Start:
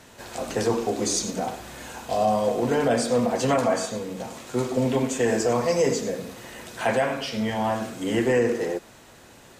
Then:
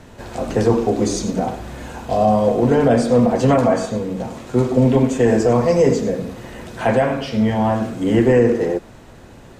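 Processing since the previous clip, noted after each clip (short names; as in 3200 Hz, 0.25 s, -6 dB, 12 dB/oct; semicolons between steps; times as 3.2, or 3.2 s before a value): tilt -2.5 dB/oct; gain +4.5 dB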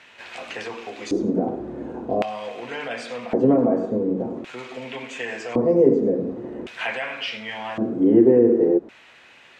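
compressor 1.5:1, threshold -22 dBFS, peak gain reduction 5 dB; LFO band-pass square 0.45 Hz 340–2500 Hz; gain +8 dB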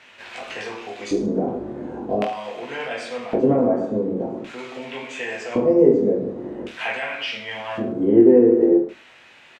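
reverse bouncing-ball echo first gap 20 ms, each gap 1.2×, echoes 5; gain -1 dB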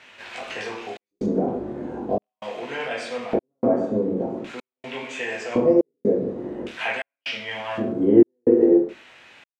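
step gate "xxxx.xxxx." 62 bpm -60 dB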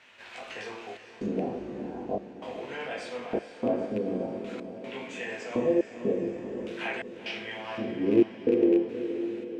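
rattling part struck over -20 dBFS, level -24 dBFS; diffused feedback echo 0.462 s, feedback 58%, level -10 dB; gain -7.5 dB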